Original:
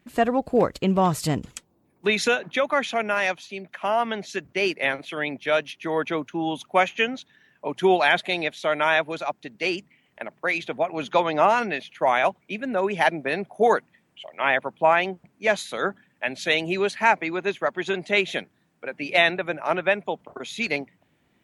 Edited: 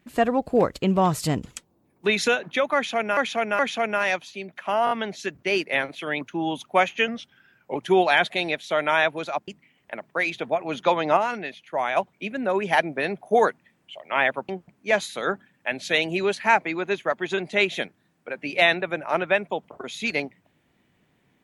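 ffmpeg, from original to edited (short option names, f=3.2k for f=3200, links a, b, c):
-filter_complex "[0:a]asplit=13[a][b][c][d][e][f][g][h][i][j][k][l][m];[a]atrim=end=3.172[n];[b]atrim=start=2.748:end=3.172[o];[c]atrim=start=2.748:end=4.032[p];[d]atrim=start=4.008:end=4.032[q];[e]atrim=start=4.008:end=4.032[r];[f]atrim=start=4.008:end=5.312[s];[g]atrim=start=6.208:end=7.084[t];[h]atrim=start=7.08:end=7.69,asetpts=PTS-STARTPTS,asetrate=39690,aresample=44100[u];[i]atrim=start=7.686:end=9.412[v];[j]atrim=start=9.758:end=11.452[w];[k]atrim=start=11.448:end=12.252,asetpts=PTS-STARTPTS,volume=-5dB[x];[l]atrim=start=12.248:end=14.772[y];[m]atrim=start=15.048[z];[n][o]acrossfade=d=0.004:c1=hsin:c2=hsin[aa];[aa][p]acrossfade=d=0.004:c1=hsin:c2=hsin[ab];[ab][q]acrossfade=d=0.004:c1=hsin:c2=hsin[ac];[ac][r]acrossfade=d=0.004:c1=hsin:c2=hsin[ad];[ad][s]acrossfade=d=0.004:c1=hsin:c2=hsin[ae];[ae][t]acrossfade=d=0.004:c1=hsin:c2=hsin[af];[af][u]acrossfade=d=0.004:c1=hsin:c2=hsin[ag];[ag][v]acrossfade=d=0.004:c1=hsin:c2=hsin[ah];[ah][w]acrossfade=d=0.004:c1=hsin:c2=hsin[ai];[ai][x]acrossfade=d=0.004:c1=hsin:c2=hsin[aj];[aj][y]acrossfade=d=0.004:c1=hsin:c2=hsin[ak];[ak][z]acrossfade=d=0.004:c1=hsin:c2=hsin"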